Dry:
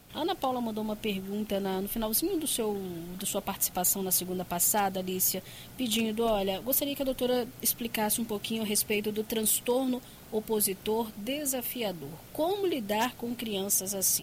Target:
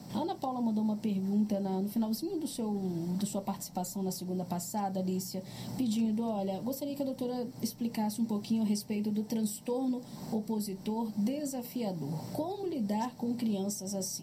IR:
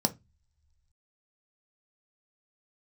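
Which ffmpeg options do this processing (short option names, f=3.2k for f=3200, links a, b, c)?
-filter_complex "[0:a]acompressor=threshold=-43dB:ratio=4[a];[1:a]atrim=start_sample=2205[b];[a][b]afir=irnorm=-1:irlink=0,volume=-3.5dB"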